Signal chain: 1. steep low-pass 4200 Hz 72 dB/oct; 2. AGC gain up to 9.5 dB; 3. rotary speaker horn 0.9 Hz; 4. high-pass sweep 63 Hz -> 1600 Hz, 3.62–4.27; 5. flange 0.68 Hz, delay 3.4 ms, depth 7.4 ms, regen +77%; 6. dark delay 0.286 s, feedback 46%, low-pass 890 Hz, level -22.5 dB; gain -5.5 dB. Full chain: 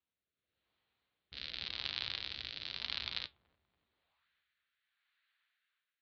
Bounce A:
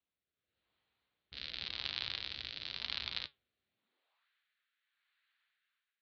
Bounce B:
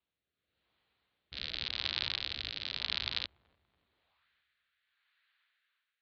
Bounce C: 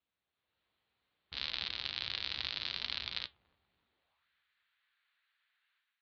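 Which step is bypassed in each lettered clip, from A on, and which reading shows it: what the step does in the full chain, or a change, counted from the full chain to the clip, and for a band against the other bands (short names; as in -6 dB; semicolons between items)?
6, echo-to-direct -27.5 dB to none; 5, loudness change +4.5 LU; 3, crest factor change -2.0 dB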